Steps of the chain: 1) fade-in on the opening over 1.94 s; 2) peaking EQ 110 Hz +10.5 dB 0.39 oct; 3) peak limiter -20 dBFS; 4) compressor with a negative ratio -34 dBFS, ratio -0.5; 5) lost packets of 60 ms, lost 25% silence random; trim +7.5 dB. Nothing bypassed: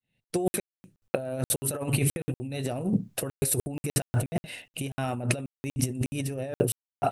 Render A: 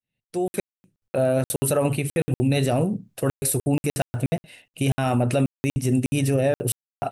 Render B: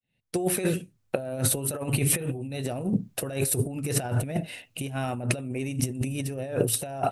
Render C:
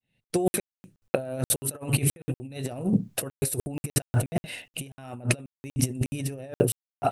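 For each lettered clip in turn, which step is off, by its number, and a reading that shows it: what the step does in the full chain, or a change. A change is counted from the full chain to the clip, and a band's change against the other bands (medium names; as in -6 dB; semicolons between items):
4, crest factor change -11.5 dB; 5, crest factor change -1.5 dB; 3, mean gain reduction 2.5 dB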